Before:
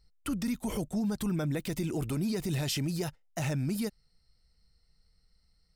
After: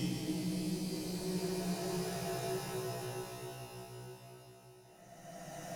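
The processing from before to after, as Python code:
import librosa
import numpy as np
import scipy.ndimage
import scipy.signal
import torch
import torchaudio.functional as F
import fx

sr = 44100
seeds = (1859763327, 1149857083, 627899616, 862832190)

y = fx.comb_fb(x, sr, f0_hz=62.0, decay_s=0.44, harmonics='all', damping=0.0, mix_pct=100)
y = fx.tube_stage(y, sr, drive_db=41.0, bias=0.4)
y = fx.paulstretch(y, sr, seeds[0], factor=12.0, window_s=0.25, from_s=2.87)
y = F.gain(torch.from_numpy(y), 9.0).numpy()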